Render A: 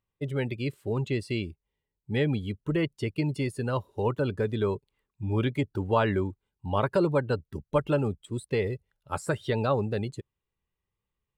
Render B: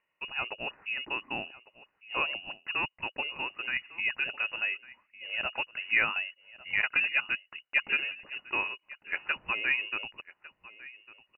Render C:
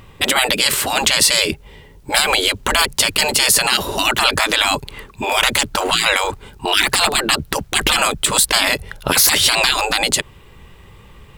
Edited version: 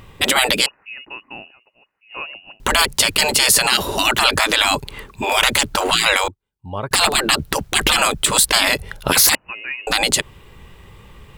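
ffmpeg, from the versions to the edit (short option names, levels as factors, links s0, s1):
-filter_complex "[1:a]asplit=2[s0][s1];[2:a]asplit=4[s2][s3][s4][s5];[s2]atrim=end=0.662[s6];[s0]atrim=start=0.658:end=2.602[s7];[s3]atrim=start=2.598:end=6.282[s8];[0:a]atrim=start=6.278:end=6.912[s9];[s4]atrim=start=6.908:end=9.352[s10];[s1]atrim=start=9.348:end=9.872[s11];[s5]atrim=start=9.868[s12];[s6][s7]acrossfade=d=0.004:c1=hsin:c2=hsin[s13];[s13][s8]acrossfade=d=0.004:c1=hsin:c2=hsin[s14];[s14][s9]acrossfade=d=0.004:c1=hsin:c2=hsin[s15];[s15][s10]acrossfade=d=0.004:c1=hsin:c2=hsin[s16];[s16][s11]acrossfade=d=0.004:c1=hsin:c2=hsin[s17];[s17][s12]acrossfade=d=0.004:c1=hsin:c2=hsin"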